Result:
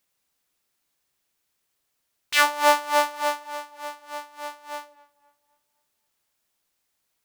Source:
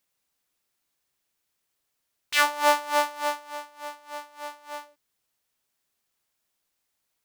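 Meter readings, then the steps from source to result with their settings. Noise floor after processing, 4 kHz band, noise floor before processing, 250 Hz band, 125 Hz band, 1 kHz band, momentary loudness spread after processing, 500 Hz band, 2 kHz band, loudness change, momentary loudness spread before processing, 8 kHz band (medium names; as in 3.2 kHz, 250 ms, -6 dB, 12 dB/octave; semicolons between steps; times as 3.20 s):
-76 dBFS, +2.5 dB, -79 dBFS, +2.0 dB, no reading, +2.5 dB, 19 LU, +2.5 dB, +2.5 dB, +1.5 dB, 19 LU, +2.5 dB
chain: tape echo 259 ms, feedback 45%, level -21 dB, low-pass 2.5 kHz; trim +2.5 dB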